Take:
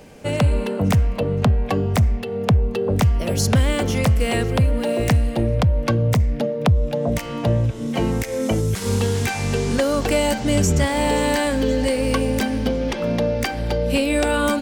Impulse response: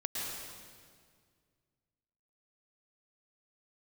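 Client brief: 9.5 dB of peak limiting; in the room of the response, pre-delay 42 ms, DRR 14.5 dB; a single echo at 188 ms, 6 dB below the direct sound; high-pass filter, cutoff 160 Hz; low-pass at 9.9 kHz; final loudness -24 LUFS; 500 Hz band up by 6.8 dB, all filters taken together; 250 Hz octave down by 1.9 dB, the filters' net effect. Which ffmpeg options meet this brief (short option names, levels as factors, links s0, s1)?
-filter_complex "[0:a]highpass=160,lowpass=9900,equalizer=f=250:t=o:g=-3.5,equalizer=f=500:t=o:g=8.5,alimiter=limit=0.211:level=0:latency=1,aecho=1:1:188:0.501,asplit=2[s0][s1];[1:a]atrim=start_sample=2205,adelay=42[s2];[s1][s2]afir=irnorm=-1:irlink=0,volume=0.126[s3];[s0][s3]amix=inputs=2:normalize=0,volume=0.75"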